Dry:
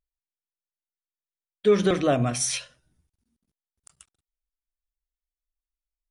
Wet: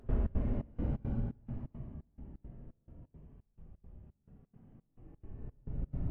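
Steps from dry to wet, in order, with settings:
wind on the microphone 210 Hz −45 dBFS
elliptic low-pass filter 3,000 Hz
low-shelf EQ 150 Hz +10.5 dB
leveller curve on the samples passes 1
extreme stretch with random phases 22×, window 0.05 s, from 0:05.28
gate pattern ".xx.xxx." 172 BPM −24 dB
level +13 dB
Ogg Vorbis 96 kbit/s 32,000 Hz

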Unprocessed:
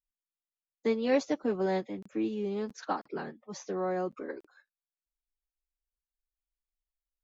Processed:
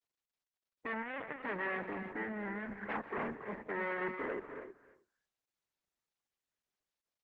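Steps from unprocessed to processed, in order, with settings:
low-pass that shuts in the quiet parts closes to 1,200 Hz, open at −26 dBFS
spectral tilt −3.5 dB per octave
0:03.40–0:04.25: floating-point word with a short mantissa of 2 bits
soft clipping −29.5 dBFS, distortion −6 dB
0:02.10–0:02.76: phaser with its sweep stopped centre 1,600 Hz, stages 4
wave folding −34 dBFS
single-tap delay 313 ms −18.5 dB
reverb whose tail is shaped and stops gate 340 ms rising, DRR 7 dB
0:01.02–0:01.43: linear-prediction vocoder at 8 kHz pitch kept
loudspeaker in its box 320–2,100 Hz, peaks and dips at 330 Hz −8 dB, 530 Hz −4 dB, 760 Hz −5 dB, 1,300 Hz −6 dB, 1,900 Hz +8 dB
level +6 dB
Opus 10 kbit/s 48,000 Hz

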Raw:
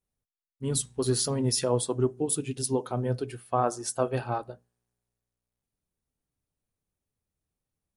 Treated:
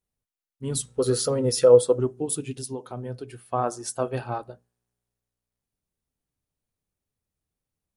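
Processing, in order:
0:00.88–0:01.99: hollow resonant body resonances 500/1,300 Hz, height 16 dB
0:02.56–0:03.47: downward compressor 2 to 1, threshold −35 dBFS, peak gain reduction 7.5 dB

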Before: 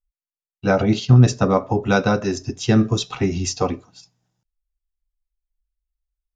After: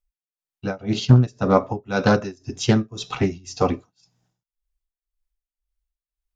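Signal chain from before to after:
amplitude tremolo 1.9 Hz, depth 96%
highs frequency-modulated by the lows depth 0.34 ms
level +2 dB

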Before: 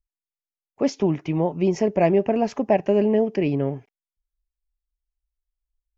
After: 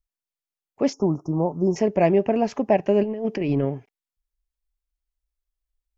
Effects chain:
0:00.93–0:01.76: Chebyshev band-stop filter 1,300–5,300 Hz, order 5
0:03.03–0:03.65: compressor whose output falls as the input rises −23 dBFS, ratio −0.5

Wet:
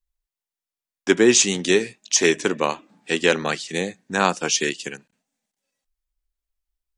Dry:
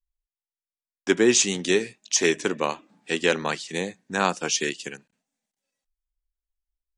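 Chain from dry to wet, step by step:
0:03.43–0:04.00: notch filter 960 Hz, Q 5.1
level +3.5 dB

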